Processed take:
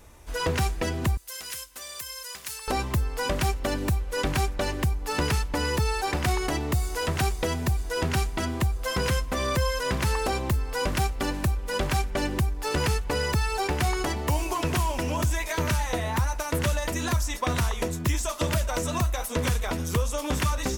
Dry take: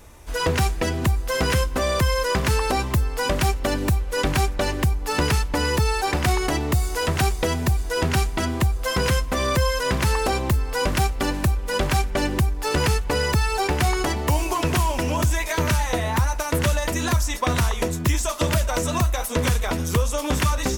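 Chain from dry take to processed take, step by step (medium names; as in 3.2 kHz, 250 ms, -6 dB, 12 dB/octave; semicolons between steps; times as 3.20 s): 1.17–2.68 s: pre-emphasis filter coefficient 0.97; trim -4.5 dB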